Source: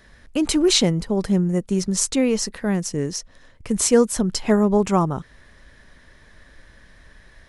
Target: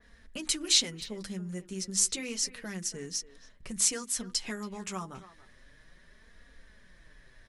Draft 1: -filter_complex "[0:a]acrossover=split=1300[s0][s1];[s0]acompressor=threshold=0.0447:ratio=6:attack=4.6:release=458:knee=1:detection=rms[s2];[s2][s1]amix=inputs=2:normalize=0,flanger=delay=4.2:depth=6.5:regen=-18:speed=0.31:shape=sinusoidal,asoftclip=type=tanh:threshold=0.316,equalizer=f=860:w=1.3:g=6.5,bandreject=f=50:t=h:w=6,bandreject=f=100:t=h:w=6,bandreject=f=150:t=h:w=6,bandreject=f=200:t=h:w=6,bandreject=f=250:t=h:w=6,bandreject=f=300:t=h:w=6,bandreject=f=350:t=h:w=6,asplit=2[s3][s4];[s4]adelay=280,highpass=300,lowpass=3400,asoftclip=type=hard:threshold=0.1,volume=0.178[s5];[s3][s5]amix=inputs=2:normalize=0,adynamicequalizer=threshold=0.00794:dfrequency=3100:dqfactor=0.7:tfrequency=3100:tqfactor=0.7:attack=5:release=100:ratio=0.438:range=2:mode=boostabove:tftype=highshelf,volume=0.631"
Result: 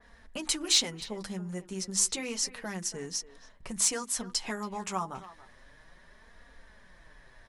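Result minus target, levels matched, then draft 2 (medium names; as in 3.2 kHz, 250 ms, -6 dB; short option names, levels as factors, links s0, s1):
saturation: distortion +17 dB; 1 kHz band +7.5 dB
-filter_complex "[0:a]acrossover=split=1300[s0][s1];[s0]acompressor=threshold=0.0447:ratio=6:attack=4.6:release=458:knee=1:detection=rms[s2];[s2][s1]amix=inputs=2:normalize=0,flanger=delay=4.2:depth=6.5:regen=-18:speed=0.31:shape=sinusoidal,asoftclip=type=tanh:threshold=0.944,equalizer=f=860:w=1.3:g=-3.5,bandreject=f=50:t=h:w=6,bandreject=f=100:t=h:w=6,bandreject=f=150:t=h:w=6,bandreject=f=200:t=h:w=6,bandreject=f=250:t=h:w=6,bandreject=f=300:t=h:w=6,bandreject=f=350:t=h:w=6,asplit=2[s3][s4];[s4]adelay=280,highpass=300,lowpass=3400,asoftclip=type=hard:threshold=0.1,volume=0.178[s5];[s3][s5]amix=inputs=2:normalize=0,adynamicequalizer=threshold=0.00794:dfrequency=3100:dqfactor=0.7:tfrequency=3100:tqfactor=0.7:attack=5:release=100:ratio=0.438:range=2:mode=boostabove:tftype=highshelf,volume=0.631"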